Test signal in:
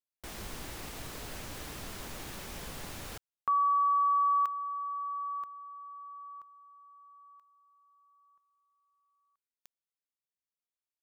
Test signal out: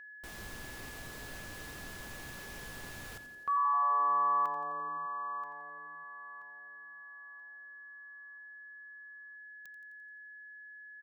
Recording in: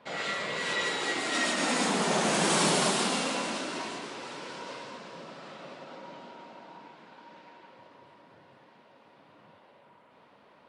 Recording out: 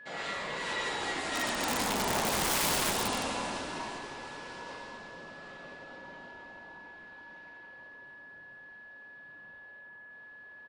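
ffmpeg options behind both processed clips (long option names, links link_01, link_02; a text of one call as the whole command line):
ffmpeg -i in.wav -filter_complex "[0:a]adynamicequalizer=threshold=0.00501:dfrequency=900:dqfactor=2.7:tfrequency=900:tqfactor=2.7:attack=5:release=100:ratio=0.375:range=3:mode=boostabove:tftype=bell,asplit=2[link_01][link_02];[link_02]asplit=7[link_03][link_04][link_05][link_06][link_07][link_08][link_09];[link_03]adelay=86,afreqshift=-140,volume=-11dB[link_10];[link_04]adelay=172,afreqshift=-280,volume=-15.2dB[link_11];[link_05]adelay=258,afreqshift=-420,volume=-19.3dB[link_12];[link_06]adelay=344,afreqshift=-560,volume=-23.5dB[link_13];[link_07]adelay=430,afreqshift=-700,volume=-27.6dB[link_14];[link_08]adelay=516,afreqshift=-840,volume=-31.8dB[link_15];[link_09]adelay=602,afreqshift=-980,volume=-35.9dB[link_16];[link_10][link_11][link_12][link_13][link_14][link_15][link_16]amix=inputs=7:normalize=0[link_17];[link_01][link_17]amix=inputs=2:normalize=0,aeval=exprs='val(0)+0.00708*sin(2*PI*1700*n/s)':channel_layout=same,aeval=exprs='(mod(7.5*val(0)+1,2)-1)/7.5':channel_layout=same,volume=-5dB" out.wav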